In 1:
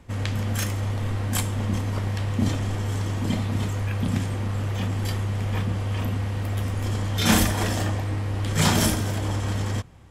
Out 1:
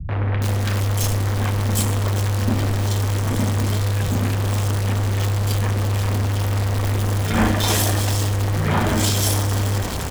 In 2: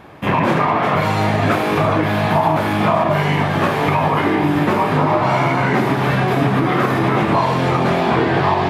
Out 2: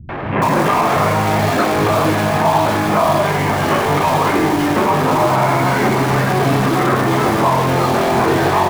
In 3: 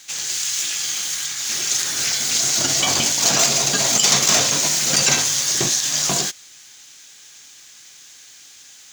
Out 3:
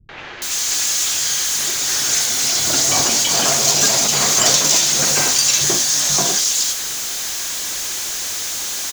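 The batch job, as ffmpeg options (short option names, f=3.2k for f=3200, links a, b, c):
-filter_complex "[0:a]aeval=exprs='val(0)+0.5*0.119*sgn(val(0))':c=same,bandreject=f=60:t=h:w=6,bandreject=f=120:t=h:w=6,bandreject=f=180:t=h:w=6,bandreject=f=240:t=h:w=6,bandreject=f=300:t=h:w=6,acrossover=split=160|2500[a][b][c];[b]adelay=90[d];[c]adelay=420[e];[a][d][e]amix=inputs=3:normalize=0"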